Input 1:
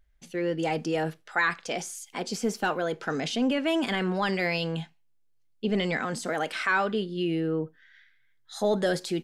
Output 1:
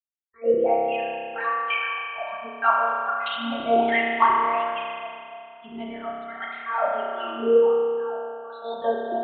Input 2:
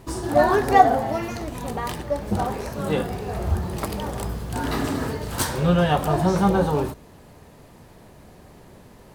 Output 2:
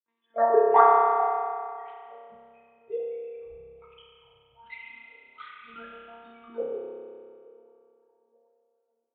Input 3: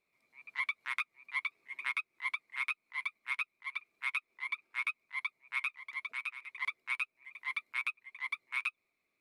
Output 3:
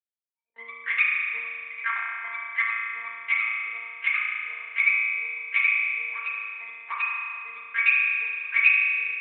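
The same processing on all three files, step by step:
expander on every frequency bin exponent 2; monotone LPC vocoder at 8 kHz 230 Hz; gate with hold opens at -50 dBFS; on a send: feedback echo behind a band-pass 439 ms, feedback 57%, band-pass 500 Hz, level -12 dB; on the sum: spectral noise reduction 19 dB; hum notches 50/100/150/200/250/300 Hz; wah-wah 1.3 Hz 430–2500 Hz, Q 5.3; spring tank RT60 2.3 s, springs 30 ms, chirp 65 ms, DRR -3 dB; normalise loudness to -24 LUFS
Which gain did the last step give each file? +18.5 dB, +5.5 dB, +21.0 dB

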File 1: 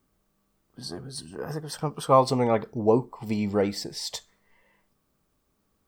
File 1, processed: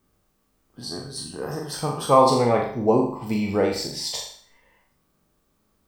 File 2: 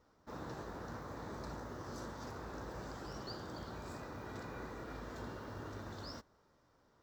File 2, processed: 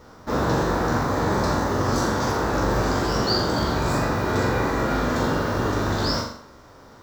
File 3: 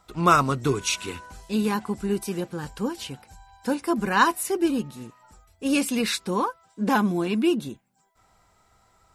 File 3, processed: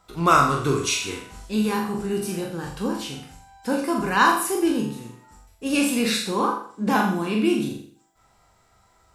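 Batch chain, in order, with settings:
spectral sustain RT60 0.39 s; flutter echo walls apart 7.2 m, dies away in 0.49 s; normalise loudness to -23 LUFS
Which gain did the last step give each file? +1.0 dB, +20.5 dB, -1.0 dB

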